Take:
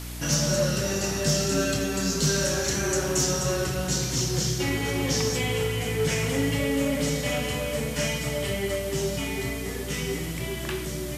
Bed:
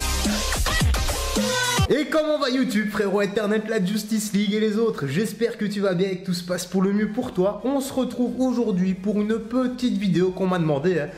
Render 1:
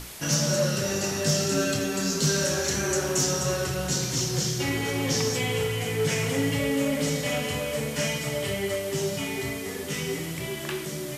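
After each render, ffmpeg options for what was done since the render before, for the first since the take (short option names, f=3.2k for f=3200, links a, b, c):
-af "bandreject=f=60:t=h:w=6,bandreject=f=120:t=h:w=6,bandreject=f=180:t=h:w=6,bandreject=f=240:t=h:w=6,bandreject=f=300:t=h:w=6,bandreject=f=360:t=h:w=6"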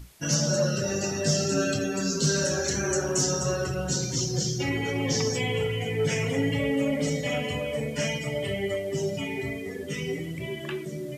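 -af "afftdn=nr=15:nf=-34"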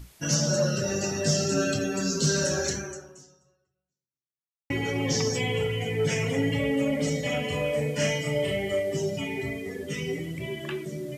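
-filter_complex "[0:a]asettb=1/sr,asplit=3[a][b][c];[a]atrim=end=7.494[d];[b]atrim=start=7.49:end=8.97,asetpts=PTS-STARTPTS,afade=t=in:d=0.004:c=qsin,afade=t=out:st=1.476:d=0.004:c=qsin,asplit=2[e][f];[f]adelay=34,volume=-3dB[g];[e][g]amix=inputs=2:normalize=0,atrim=end_sample=65268[h];[c]atrim=start=8.966[i];[d][h]acrossfade=d=0.004:c1=hsin:c2=qsin[j];[j][i]acrossfade=d=0.004:c1=qsin:c2=hsin,asplit=2[k][l];[k]atrim=end=4.7,asetpts=PTS-STARTPTS,afade=t=out:st=2.68:d=2.02:c=exp[m];[l]atrim=start=4.7,asetpts=PTS-STARTPTS,afade=t=in:d=0.004:c=hsin[n];[m][n]concat=n=2:v=0:a=1"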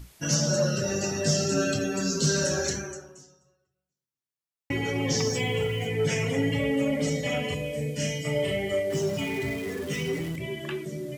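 -filter_complex "[0:a]asettb=1/sr,asplit=3[a][b][c];[a]atrim=end=5.174[d];[b]atrim=start=5.17:end=5.87,asetpts=PTS-STARTPTS,afade=t=in:d=0.004:c=qsin,afade=t=out:st=0.696:d=0.004:c=qsin,aeval=exprs='val(0)*gte(abs(val(0)),0.00631)':c=same[e];[c]atrim=start=5.866[f];[d][e]acrossfade=d=0.004:c1=hsin:c2=qsin[g];[g][f]acrossfade=d=0.004:c1=qsin:c2=hsin,asettb=1/sr,asplit=3[h][i][j];[h]atrim=end=7.544[k];[i]atrim=start=7.54:end=8.25,asetpts=PTS-STARTPTS,afade=t=in:d=0.004:c=qsin,afade=t=out:st=0.706:d=0.004:c=qsin,equalizer=f=1.1k:t=o:w=1.7:g=-14[l];[j]atrim=start=8.246[m];[k][l]acrossfade=d=0.004:c1=hsin:c2=qsin[n];[n][m]acrossfade=d=0.004:c1=qsin:c2=hsin,asettb=1/sr,asplit=3[o][p][q];[o]atrim=end=8.904[r];[p]atrim=start=8.9:end=10.36,asetpts=PTS-STARTPTS,afade=t=in:d=0.004:c=qsin,afade=t=out:st=1.456:d=0.004:c=qsin,aeval=exprs='val(0)+0.5*0.015*sgn(val(0))':c=same[s];[q]atrim=start=10.356[t];[r][s]acrossfade=d=0.004:c1=hsin:c2=qsin[u];[u][t]acrossfade=d=0.004:c1=qsin:c2=hsin"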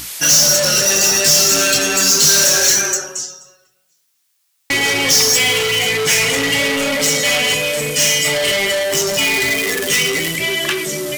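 -filter_complex "[0:a]asplit=2[a][b];[b]highpass=f=720:p=1,volume=25dB,asoftclip=type=tanh:threshold=-14dB[c];[a][c]amix=inputs=2:normalize=0,lowpass=f=3.4k:p=1,volume=-6dB,crystalizer=i=6.5:c=0"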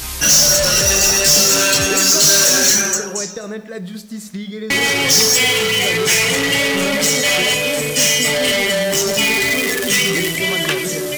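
-filter_complex "[1:a]volume=-6dB[a];[0:a][a]amix=inputs=2:normalize=0"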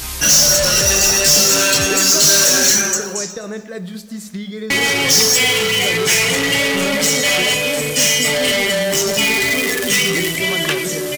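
-af "aecho=1:1:368:0.0668"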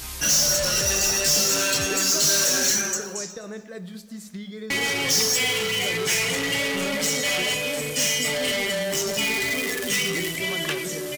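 -af "volume=-8.5dB"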